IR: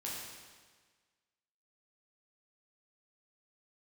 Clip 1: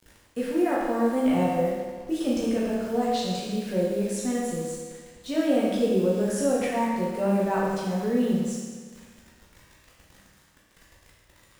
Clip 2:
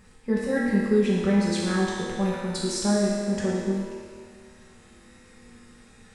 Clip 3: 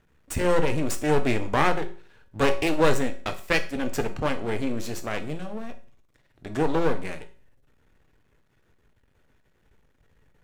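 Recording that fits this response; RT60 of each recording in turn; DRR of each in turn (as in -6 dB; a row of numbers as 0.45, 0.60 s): 1; 1.5, 2.1, 0.40 s; -6.0, -7.0, 7.5 dB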